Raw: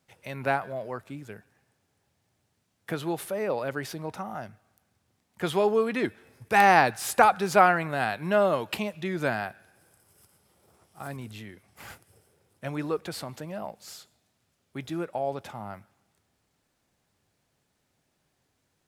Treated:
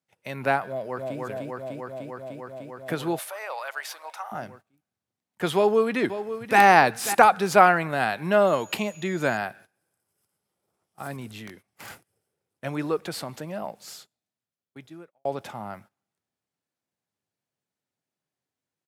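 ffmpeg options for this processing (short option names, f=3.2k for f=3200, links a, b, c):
-filter_complex "[0:a]asplit=2[a][b];[b]afade=t=in:st=0.66:d=0.01,afade=t=out:st=1.2:d=0.01,aecho=0:1:300|600|900|1200|1500|1800|2100|2400|2700|3000|3300|3600:0.841395|0.715186|0.607908|0.516722|0.439214|0.373331|0.317332|0.269732|0.229272|0.194881|0.165649|0.140802[c];[a][c]amix=inputs=2:normalize=0,asettb=1/sr,asplit=3[d][e][f];[d]atrim=end=3.194[g];[e]atrim=start=3.19:end=4.32,asetpts=PTS-STARTPTS,afade=t=in:d=0.004:c=qsin,afade=t=out:st=1.126:d=0.004:c=qsin,highpass=f=770:w=0.5412,highpass=f=770:w=1.3066[h];[f]atrim=start=4.316[i];[g][h]acrossfade=d=0.004:c1=hsin:c2=qsin[j];[j][i]acrossfade=d=0.004:c1=qsin:c2=hsin,asplit=2[k][l];[l]afade=t=in:st=5.55:d=0.01,afade=t=out:st=6.6:d=0.01,aecho=0:1:540|1080|1620:0.266073|0.0665181|0.0166295[m];[k][m]amix=inputs=2:normalize=0,asettb=1/sr,asplit=3[n][o][p];[n]atrim=end=8.474[q];[o]atrim=start=8.47:end=9.37,asetpts=PTS-STARTPTS,afade=t=in:d=0.004:c=qsin,afade=t=out:st=0.896:d=0.004:c=qsin,aeval=exprs='val(0)+0.00251*sin(2*PI*6800*n/s)':c=same[r];[p]atrim=start=9.366[s];[q][r]acrossfade=d=0.004:c1=hsin:c2=qsin[t];[t][s]acrossfade=d=0.004:c1=qsin:c2=hsin,asettb=1/sr,asplit=3[u][v][w];[u]atrim=end=11.474[x];[v]atrim=start=11.47:end=11.89,asetpts=PTS-STARTPTS,afade=t=in:d=0.004:c=qsin,afade=t=out:st=0.416:d=0.004:c=qsin,aeval=exprs='(mod(56.2*val(0)+1,2)-1)/56.2':c=same[y];[w]atrim=start=11.886[z];[x][y]acrossfade=d=0.004:c1=hsin:c2=qsin[aa];[aa][z]acrossfade=d=0.004:c1=qsin:c2=hsin,asplit=2[ab][ac];[ab]atrim=end=15.25,asetpts=PTS-STARTPTS,afade=t=out:st=13.79:d=1.46[ad];[ac]atrim=start=15.25,asetpts=PTS-STARTPTS,afade=t=in:d=0.004:c=hsin[ae];[ad][ae]concat=n=2:v=0:a=1,agate=range=-18dB:threshold=-51dB:ratio=16:detection=peak,highpass=120,volume=3dB"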